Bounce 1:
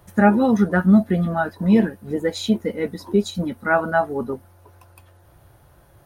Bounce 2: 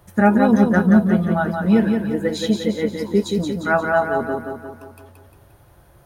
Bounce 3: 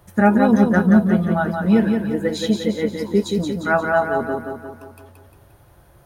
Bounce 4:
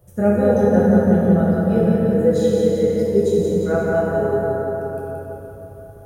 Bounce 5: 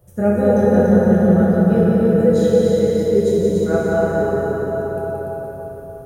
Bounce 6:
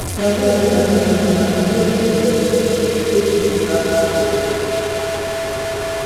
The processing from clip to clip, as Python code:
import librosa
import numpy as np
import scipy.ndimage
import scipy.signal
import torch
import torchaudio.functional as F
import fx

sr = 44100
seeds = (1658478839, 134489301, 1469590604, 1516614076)

y1 = fx.echo_feedback(x, sr, ms=176, feedback_pct=52, wet_db=-5.0)
y2 = y1
y3 = fx.graphic_eq_10(y2, sr, hz=(125, 250, 500, 1000, 2000, 4000), db=(8, -10, 8, -11, -9, -8))
y3 = fx.rev_plate(y3, sr, seeds[0], rt60_s=3.9, hf_ratio=0.5, predelay_ms=0, drr_db=-5.5)
y3 = F.gain(torch.from_numpy(y3), -3.5).numpy()
y4 = fx.echo_feedback(y3, sr, ms=290, feedback_pct=47, wet_db=-4.0)
y5 = fx.delta_mod(y4, sr, bps=64000, step_db=-17.0)
y5 = y5 + 0.38 * np.pad(y5, (int(2.9 * sr / 1000.0), 0))[:len(y5)]